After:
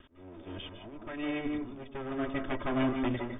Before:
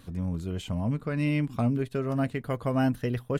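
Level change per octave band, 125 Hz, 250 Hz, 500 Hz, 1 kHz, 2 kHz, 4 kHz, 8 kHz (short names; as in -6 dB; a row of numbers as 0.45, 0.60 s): -14.5 dB, -5.0 dB, -5.0 dB, -3.0 dB, -2.0 dB, -0.5 dB, n/a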